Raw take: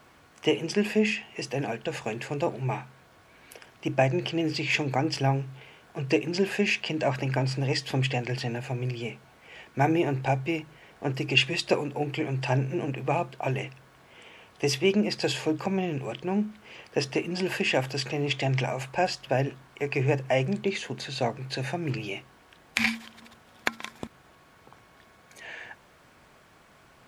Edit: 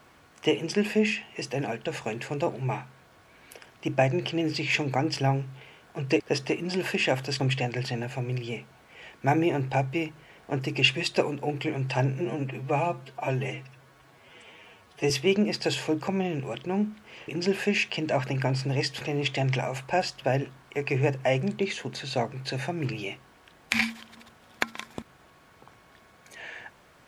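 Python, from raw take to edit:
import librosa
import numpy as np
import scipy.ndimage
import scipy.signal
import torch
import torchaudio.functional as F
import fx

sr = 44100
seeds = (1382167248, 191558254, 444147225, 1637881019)

y = fx.edit(x, sr, fx.swap(start_s=6.2, length_s=1.73, other_s=16.86, other_length_s=1.2),
    fx.stretch_span(start_s=12.78, length_s=1.9, factor=1.5), tone=tone)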